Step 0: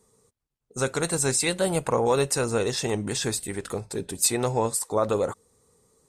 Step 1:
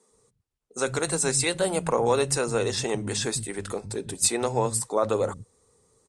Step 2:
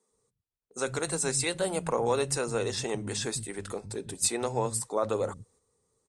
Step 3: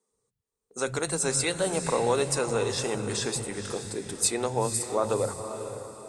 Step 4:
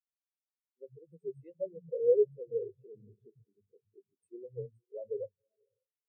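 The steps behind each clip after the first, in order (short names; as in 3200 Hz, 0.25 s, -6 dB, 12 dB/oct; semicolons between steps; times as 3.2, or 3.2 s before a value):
steep low-pass 11000 Hz 48 dB/oct; bands offset in time highs, lows 0.11 s, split 190 Hz
gate -58 dBFS, range -6 dB; gain -4.5 dB
AGC gain up to 6 dB; diffused feedback echo 0.498 s, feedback 42%, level -9 dB; gain -4 dB
bell 4400 Hz -7 dB 0.69 oct; fixed phaser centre 2700 Hz, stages 4; spectral expander 4:1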